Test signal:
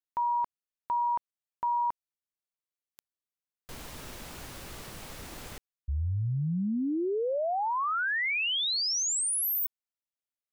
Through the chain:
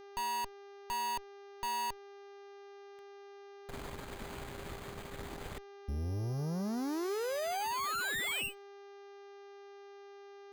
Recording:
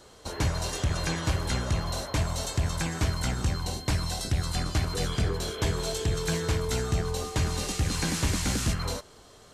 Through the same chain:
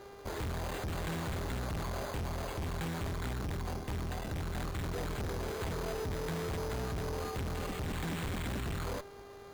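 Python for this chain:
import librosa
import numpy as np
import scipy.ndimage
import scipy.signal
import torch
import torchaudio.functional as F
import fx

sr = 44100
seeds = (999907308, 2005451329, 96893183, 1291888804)

y = np.repeat(scipy.signal.resample_poly(x, 1, 8), 8)[:len(x)]
y = fx.tube_stage(y, sr, drive_db=39.0, bias=0.8)
y = fx.dmg_buzz(y, sr, base_hz=400.0, harmonics=16, level_db=-57.0, tilt_db=-8, odd_only=False)
y = y * 10.0 ** (4.5 / 20.0)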